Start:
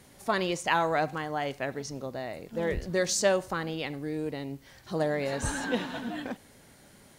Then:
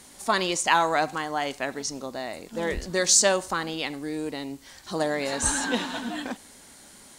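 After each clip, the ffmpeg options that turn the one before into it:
ffmpeg -i in.wav -af "equalizer=frequency=125:width_type=o:width=1:gain=-10,equalizer=frequency=250:width_type=o:width=1:gain=3,equalizer=frequency=500:width_type=o:width=1:gain=-3,equalizer=frequency=1000:width_type=o:width=1:gain=4,equalizer=frequency=4000:width_type=o:width=1:gain=4,equalizer=frequency=8000:width_type=o:width=1:gain=10,volume=2.5dB" out.wav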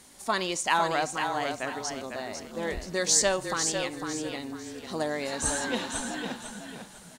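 ffmpeg -i in.wav -filter_complex "[0:a]asplit=5[link_01][link_02][link_03][link_04][link_05];[link_02]adelay=500,afreqshift=-31,volume=-6.5dB[link_06];[link_03]adelay=1000,afreqshift=-62,volume=-16.4dB[link_07];[link_04]adelay=1500,afreqshift=-93,volume=-26.3dB[link_08];[link_05]adelay=2000,afreqshift=-124,volume=-36.2dB[link_09];[link_01][link_06][link_07][link_08][link_09]amix=inputs=5:normalize=0,volume=-4dB" out.wav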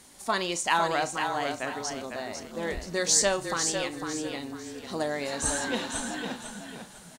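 ffmpeg -i in.wav -filter_complex "[0:a]asplit=2[link_01][link_02];[link_02]adelay=35,volume=-13.5dB[link_03];[link_01][link_03]amix=inputs=2:normalize=0" out.wav

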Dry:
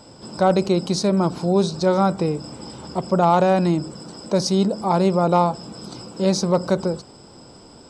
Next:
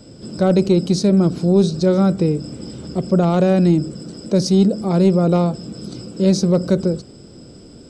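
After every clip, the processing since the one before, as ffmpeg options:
ffmpeg -i in.wav -filter_complex "[0:a]equalizer=frequency=920:width_type=o:width=0.67:gain=-13.5,acrossover=split=500|4600[link_01][link_02][link_03];[link_01]acontrast=71[link_04];[link_04][link_02][link_03]amix=inputs=3:normalize=0" out.wav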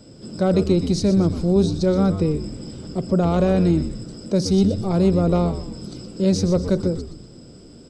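ffmpeg -i in.wav -filter_complex "[0:a]asplit=5[link_01][link_02][link_03][link_04][link_05];[link_02]adelay=122,afreqshift=-100,volume=-10.5dB[link_06];[link_03]adelay=244,afreqshift=-200,volume=-18dB[link_07];[link_04]adelay=366,afreqshift=-300,volume=-25.6dB[link_08];[link_05]adelay=488,afreqshift=-400,volume=-33.1dB[link_09];[link_01][link_06][link_07][link_08][link_09]amix=inputs=5:normalize=0,volume=-3.5dB" out.wav

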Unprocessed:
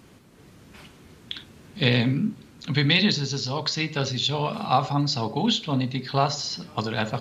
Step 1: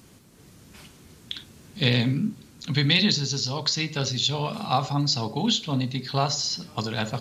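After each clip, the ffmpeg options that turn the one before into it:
ffmpeg -i in.wav -af "bass=frequency=250:gain=3,treble=frequency=4000:gain=9,volume=-3dB" out.wav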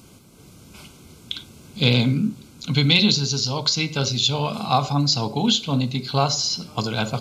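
ffmpeg -i in.wav -af "asuperstop=centerf=1800:order=8:qfactor=4.3,volume=4dB" out.wav

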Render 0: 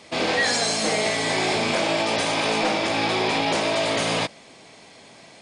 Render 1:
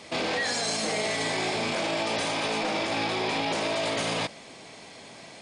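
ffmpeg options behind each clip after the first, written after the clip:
ffmpeg -i in.wav -af "alimiter=limit=-21.5dB:level=0:latency=1:release=26,volume=1.5dB" out.wav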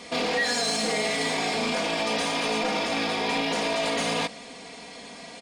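ffmpeg -i in.wav -filter_complex "[0:a]aecho=1:1:4.2:0.71,asplit=2[link_01][link_02];[link_02]asoftclip=type=tanh:threshold=-33.5dB,volume=-7.5dB[link_03];[link_01][link_03]amix=inputs=2:normalize=0,volume=-1dB" out.wav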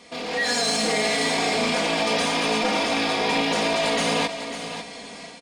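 ffmpeg -i in.wav -filter_complex "[0:a]dynaudnorm=framelen=250:gausssize=3:maxgain=10dB,asplit=2[link_01][link_02];[link_02]aecho=0:1:547:0.316[link_03];[link_01][link_03]amix=inputs=2:normalize=0,volume=-6.5dB" out.wav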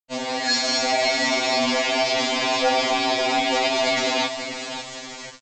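ffmpeg -i in.wav -af "aresample=16000,acrusher=bits=5:mix=0:aa=0.000001,aresample=44100,afftfilt=real='re*2.45*eq(mod(b,6),0)':imag='im*2.45*eq(mod(b,6),0)':win_size=2048:overlap=0.75,volume=4dB" out.wav

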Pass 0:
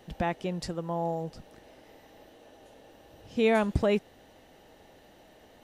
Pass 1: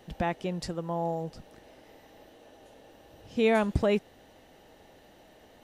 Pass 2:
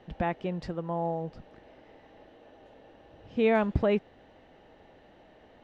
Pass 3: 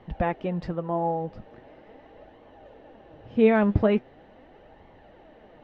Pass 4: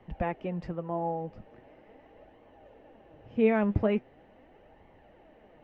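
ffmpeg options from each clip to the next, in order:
ffmpeg -i in.wav -af anull out.wav
ffmpeg -i in.wav -af "lowpass=2800" out.wav
ffmpeg -i in.wav -af "aemphasis=mode=reproduction:type=75kf,flanger=delay=0.9:depth=9:regen=48:speed=0.41:shape=sinusoidal,volume=9dB" out.wav
ffmpeg -i in.wav -filter_complex "[0:a]highshelf=frequency=3300:gain=-9.5,acrossover=split=200|720[link_01][link_02][link_03];[link_03]aexciter=amount=1.5:drive=5:freq=2100[link_04];[link_01][link_02][link_04]amix=inputs=3:normalize=0,volume=-5dB" out.wav

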